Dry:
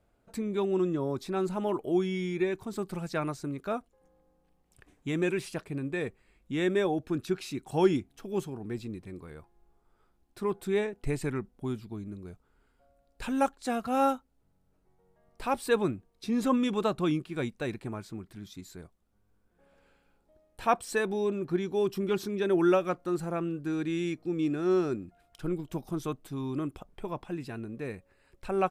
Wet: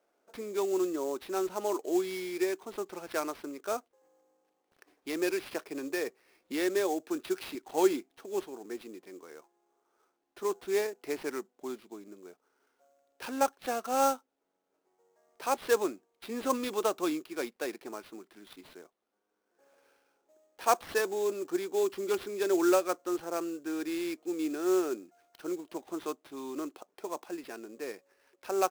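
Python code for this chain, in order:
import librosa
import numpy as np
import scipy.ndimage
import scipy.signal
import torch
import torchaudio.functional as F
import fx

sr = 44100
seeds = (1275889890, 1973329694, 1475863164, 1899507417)

y = scipy.signal.sosfilt(scipy.signal.butter(4, 320.0, 'highpass', fs=sr, output='sos'), x)
y = fx.high_shelf(y, sr, hz=8600.0, db=-11.0)
y = fx.sample_hold(y, sr, seeds[0], rate_hz=7300.0, jitter_pct=20)
y = fx.band_squash(y, sr, depth_pct=40, at=(5.51, 7.55))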